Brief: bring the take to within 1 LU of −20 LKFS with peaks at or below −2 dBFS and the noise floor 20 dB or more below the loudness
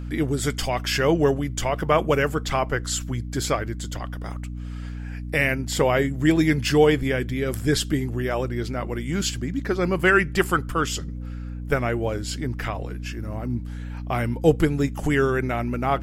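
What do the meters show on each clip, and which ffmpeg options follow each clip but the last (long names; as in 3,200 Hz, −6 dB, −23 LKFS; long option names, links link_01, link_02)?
mains hum 60 Hz; hum harmonics up to 300 Hz; level of the hum −30 dBFS; integrated loudness −23.5 LKFS; sample peak −5.0 dBFS; target loudness −20.0 LKFS
→ -af "bandreject=frequency=60:width_type=h:width=6,bandreject=frequency=120:width_type=h:width=6,bandreject=frequency=180:width_type=h:width=6,bandreject=frequency=240:width_type=h:width=6,bandreject=frequency=300:width_type=h:width=6"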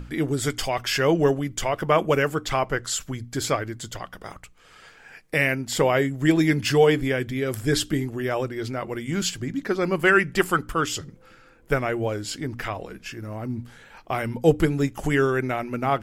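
mains hum none found; integrated loudness −24.0 LKFS; sample peak −5.0 dBFS; target loudness −20.0 LKFS
→ -af "volume=4dB,alimiter=limit=-2dB:level=0:latency=1"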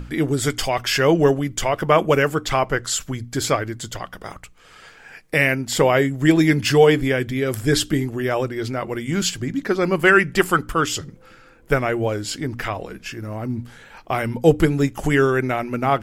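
integrated loudness −20.0 LKFS; sample peak −2.0 dBFS; background noise floor −48 dBFS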